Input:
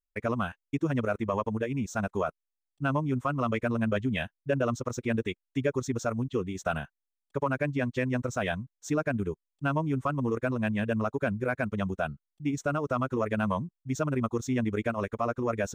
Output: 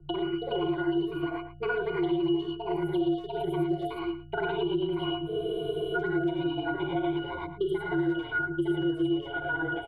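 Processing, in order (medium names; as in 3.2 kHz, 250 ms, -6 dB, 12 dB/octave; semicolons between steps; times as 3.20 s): gliding tape speed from 178% -> 141%; mains buzz 60 Hz, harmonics 4, -46 dBFS -9 dB/octave; bass shelf 260 Hz -9.5 dB; pitch-class resonator F#, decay 0.26 s; gated-style reverb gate 130 ms rising, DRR -2.5 dB; level rider gain up to 14 dB; treble shelf 7.7 kHz +8.5 dB; static phaser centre 1.2 kHz, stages 8; speakerphone echo 110 ms, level -15 dB; frequency shift -35 Hz; spectral freeze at 5.29 s, 0.67 s; three bands compressed up and down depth 100%; trim +1 dB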